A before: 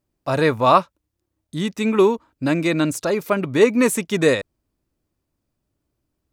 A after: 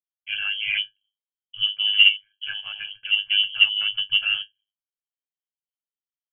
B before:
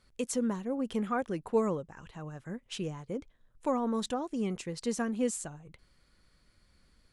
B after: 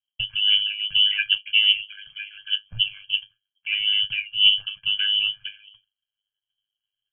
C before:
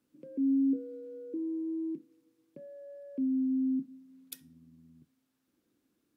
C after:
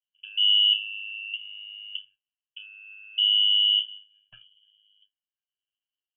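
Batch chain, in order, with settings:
expander -46 dBFS; octave resonator G, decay 0.14 s; in parallel at -8.5 dB: soft clip -24 dBFS; on the sum: ring modulator 51 Hz; inverted band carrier 3200 Hz; match loudness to -20 LUFS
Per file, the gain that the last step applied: +6.5, +20.5, +25.0 dB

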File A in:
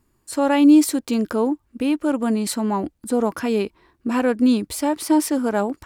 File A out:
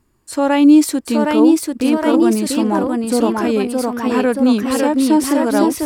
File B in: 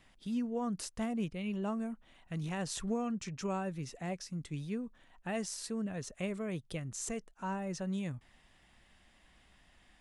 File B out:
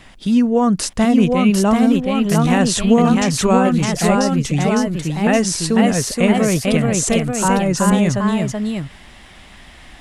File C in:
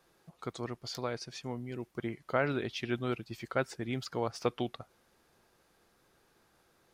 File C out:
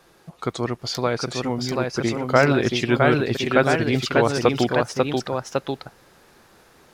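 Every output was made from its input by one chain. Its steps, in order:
high shelf 12000 Hz -5 dB; echoes that change speed 0.793 s, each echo +1 st, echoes 2; normalise peaks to -1.5 dBFS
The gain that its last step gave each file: +3.0, +20.5, +13.5 dB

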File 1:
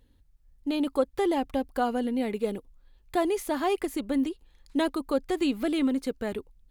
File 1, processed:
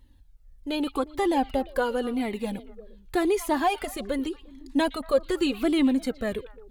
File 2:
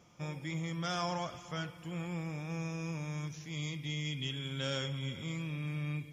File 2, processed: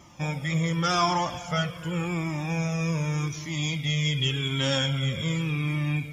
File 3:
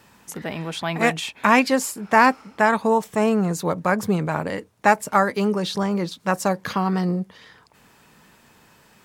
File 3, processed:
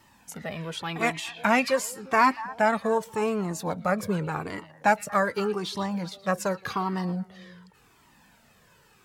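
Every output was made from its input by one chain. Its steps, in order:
delay with a stepping band-pass 0.117 s, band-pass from 3200 Hz, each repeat -1.4 oct, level -12 dB; cascading flanger falling 0.87 Hz; match loudness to -27 LUFS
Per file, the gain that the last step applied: +7.5, +16.0, -1.0 dB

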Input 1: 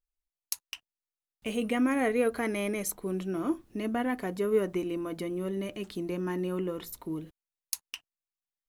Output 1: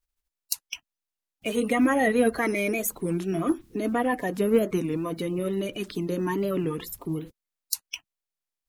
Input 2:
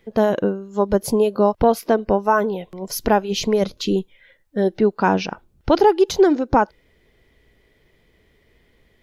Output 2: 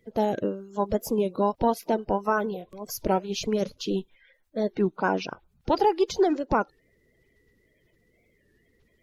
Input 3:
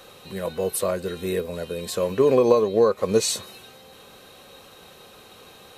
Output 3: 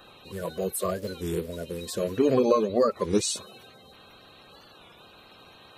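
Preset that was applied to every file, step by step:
bin magnitudes rounded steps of 30 dB; record warp 33 1/3 rpm, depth 160 cents; match loudness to -27 LUFS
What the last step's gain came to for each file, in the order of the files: +5.5, -7.0, -3.5 dB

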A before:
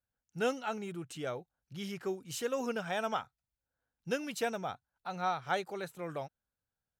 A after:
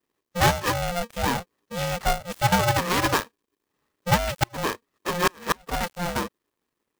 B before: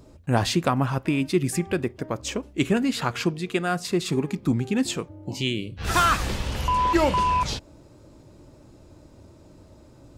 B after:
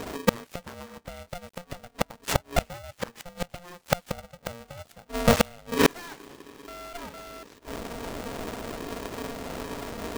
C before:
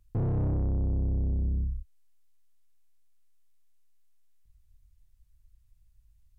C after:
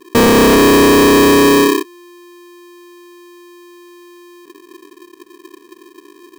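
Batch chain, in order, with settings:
switching dead time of 0.14 ms; in parallel at -11 dB: decimation with a swept rate 30×, swing 160% 0.69 Hz; on the sum: flipped gate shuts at -19 dBFS, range -33 dB; polarity switched at an audio rate 350 Hz; normalise peaks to -6 dBFS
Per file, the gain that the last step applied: +12.0, +12.0, +16.5 dB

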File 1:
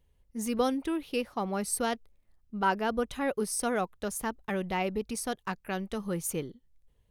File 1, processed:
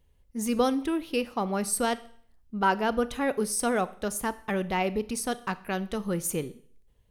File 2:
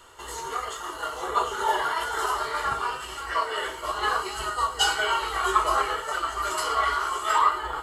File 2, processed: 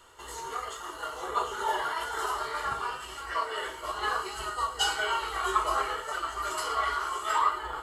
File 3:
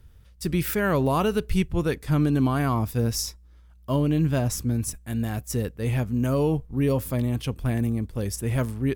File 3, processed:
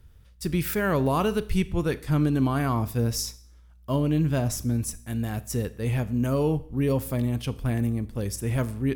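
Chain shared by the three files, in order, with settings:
Schroeder reverb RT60 0.55 s, combs from 26 ms, DRR 15.5 dB; normalise peaks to -12 dBFS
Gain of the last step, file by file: +3.0, -5.0, -1.5 dB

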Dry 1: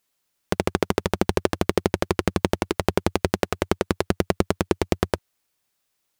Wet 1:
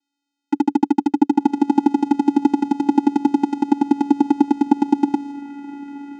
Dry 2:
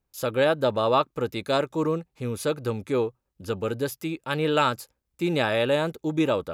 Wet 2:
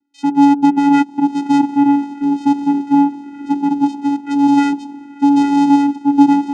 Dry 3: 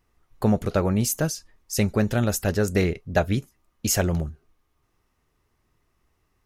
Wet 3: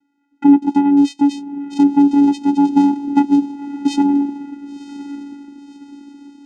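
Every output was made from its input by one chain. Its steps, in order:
diffused feedback echo 1.049 s, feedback 44%, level -14 dB; envelope phaser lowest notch 380 Hz, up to 1700 Hz, full sweep at -24 dBFS; vocoder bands 4, square 283 Hz; normalise peaks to -1.5 dBFS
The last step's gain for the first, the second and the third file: +8.5, +14.0, +11.5 dB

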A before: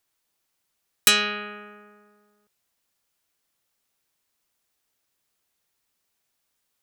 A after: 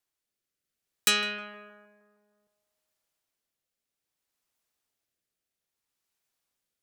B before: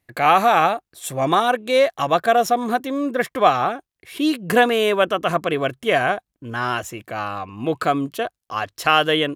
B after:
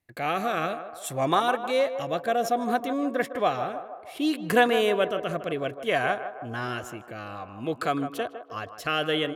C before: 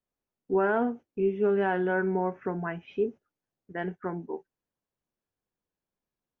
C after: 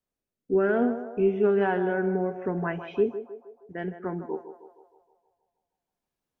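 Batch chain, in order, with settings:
rotary speaker horn 0.6 Hz; narrowing echo 0.156 s, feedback 61%, band-pass 730 Hz, level -9 dB; match loudness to -27 LUFS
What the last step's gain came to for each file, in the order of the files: -5.0, -4.5, +4.0 dB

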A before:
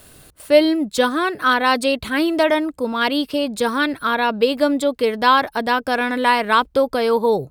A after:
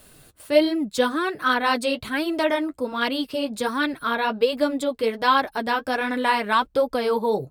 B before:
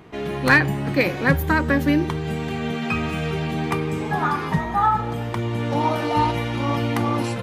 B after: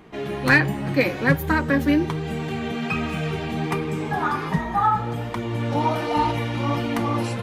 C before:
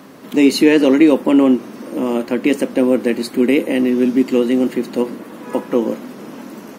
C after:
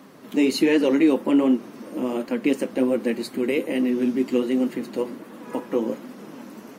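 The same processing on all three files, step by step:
flange 1.3 Hz, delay 3.4 ms, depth 7.1 ms, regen -31%; match loudness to -23 LUFS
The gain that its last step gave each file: -1.0, +2.5, -3.5 dB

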